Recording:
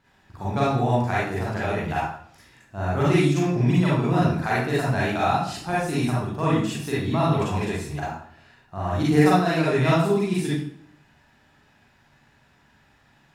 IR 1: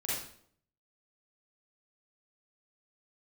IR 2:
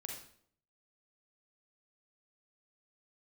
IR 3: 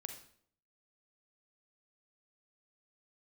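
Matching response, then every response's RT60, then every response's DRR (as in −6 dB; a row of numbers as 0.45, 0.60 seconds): 1; 0.60, 0.60, 0.60 seconds; −8.5, 0.0, 5.0 decibels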